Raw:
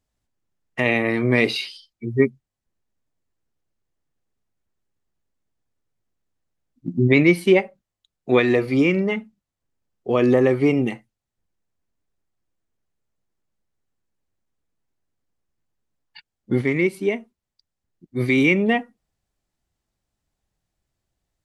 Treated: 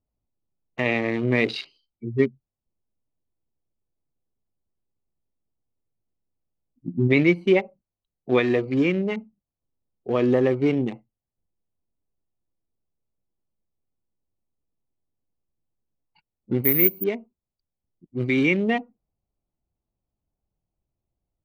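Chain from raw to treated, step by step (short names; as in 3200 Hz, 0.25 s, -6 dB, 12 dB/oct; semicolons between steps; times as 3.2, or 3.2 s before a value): Wiener smoothing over 25 samples; LPF 6900 Hz 12 dB/oct; 16.64–17.04 careless resampling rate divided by 3×, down filtered, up zero stuff; gain -3 dB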